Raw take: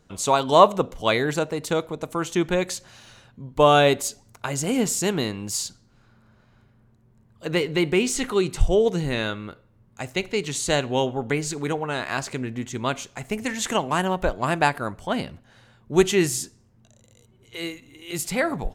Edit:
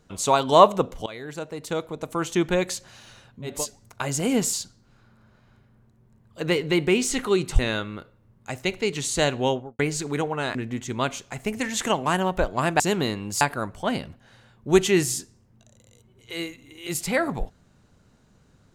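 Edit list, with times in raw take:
1.06–2.23 fade in, from -21.5 dB
3.54–3.98 cut, crossfade 0.24 s
4.97–5.58 move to 14.65
8.64–9.1 cut
10.95–11.3 studio fade out
12.06–12.4 cut

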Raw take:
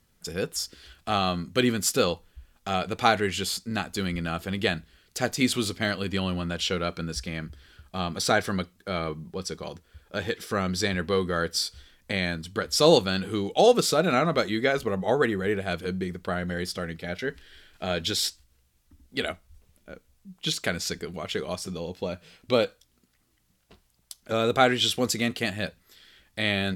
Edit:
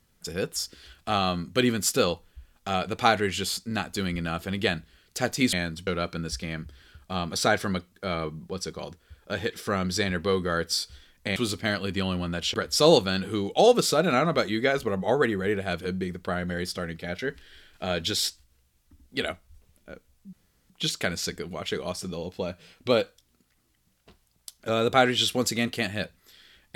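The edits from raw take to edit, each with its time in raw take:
5.53–6.71 swap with 12.2–12.54
20.33 insert room tone 0.37 s

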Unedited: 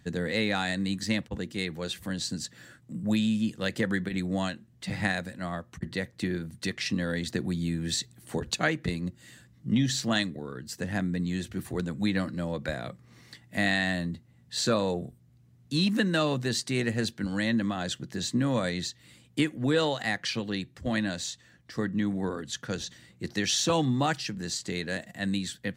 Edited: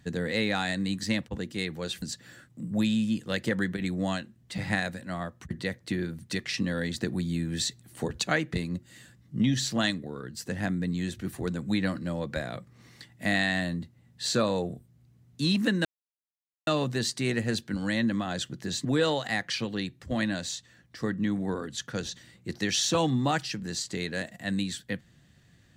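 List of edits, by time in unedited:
2.02–2.34 cut
16.17 insert silence 0.82 s
18.35–19.6 cut

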